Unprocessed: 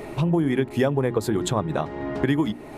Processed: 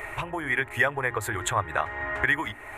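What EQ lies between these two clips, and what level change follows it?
drawn EQ curve 100 Hz 0 dB, 170 Hz −23 dB, 1,900 Hz +12 dB, 4,900 Hz −11 dB, 7,200 Hz +2 dB
0.0 dB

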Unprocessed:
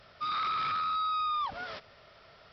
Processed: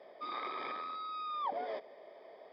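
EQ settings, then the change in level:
moving average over 32 samples
high-pass filter 330 Hz 24 dB per octave
+10.0 dB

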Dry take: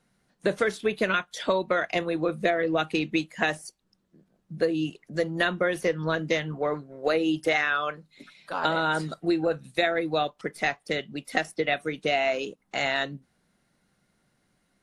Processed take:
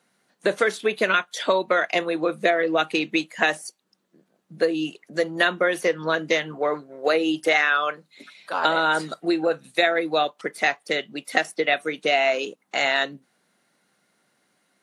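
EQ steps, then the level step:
high-pass filter 220 Hz 12 dB per octave
low-shelf EQ 340 Hz −5.5 dB
notch filter 5,200 Hz, Q 24
+5.5 dB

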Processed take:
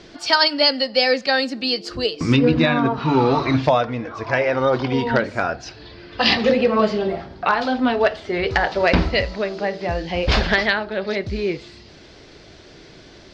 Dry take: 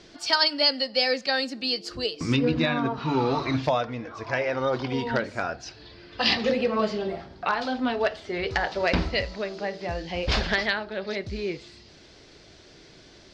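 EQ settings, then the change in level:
high-shelf EQ 5,200 Hz −8 dB
+7.5 dB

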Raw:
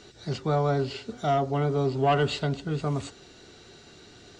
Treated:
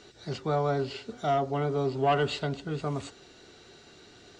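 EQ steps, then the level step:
bass and treble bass −4 dB, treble −2 dB
−1.5 dB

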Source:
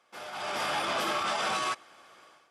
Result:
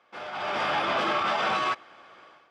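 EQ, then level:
low-pass filter 3,300 Hz 12 dB per octave
+4.5 dB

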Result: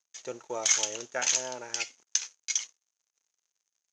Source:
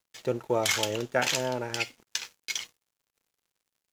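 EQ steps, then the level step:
high-pass filter 720 Hz 6 dB per octave
low-pass with resonance 6,400 Hz, resonance Q 10
high-shelf EQ 4,900 Hz −6 dB
−4.0 dB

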